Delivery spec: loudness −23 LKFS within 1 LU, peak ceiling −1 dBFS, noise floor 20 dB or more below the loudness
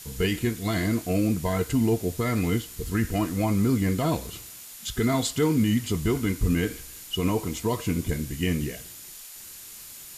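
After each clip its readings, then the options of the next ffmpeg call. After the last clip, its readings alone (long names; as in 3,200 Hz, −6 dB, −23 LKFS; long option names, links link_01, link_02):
interfering tone 7,000 Hz; level of the tone −52 dBFS; background noise floor −43 dBFS; target noise floor −46 dBFS; integrated loudness −26.0 LKFS; sample peak −13.5 dBFS; target loudness −23.0 LKFS
→ -af "bandreject=frequency=7000:width=30"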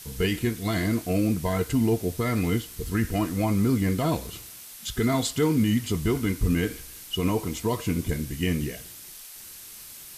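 interfering tone none found; background noise floor −44 dBFS; target noise floor −47 dBFS
→ -af "afftdn=noise_reduction=6:noise_floor=-44"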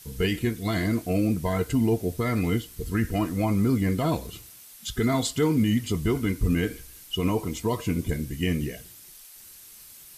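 background noise floor −48 dBFS; integrated loudness −26.5 LKFS; sample peak −13.5 dBFS; target loudness −23.0 LKFS
→ -af "volume=3.5dB"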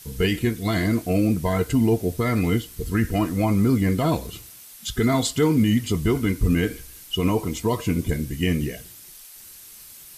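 integrated loudness −23.0 LKFS; sample peak −10.0 dBFS; background noise floor −45 dBFS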